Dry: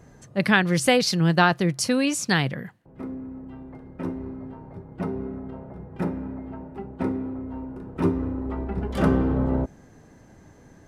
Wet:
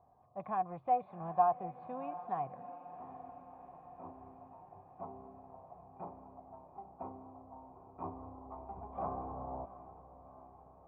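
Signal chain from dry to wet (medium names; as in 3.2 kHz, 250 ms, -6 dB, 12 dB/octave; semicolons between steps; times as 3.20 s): knee-point frequency compression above 3.1 kHz 1.5:1; peaking EQ 89 Hz +8 dB 0.58 oct; in parallel at -8 dB: wavefolder -16.5 dBFS; on the sum: cascade formant filter a; on a send: echo that smears into a reverb 744 ms, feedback 61%, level -14 dB; on the sum: low-pass that closes with the level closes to 3 kHz, closed at -31.5 dBFS; trim -2 dB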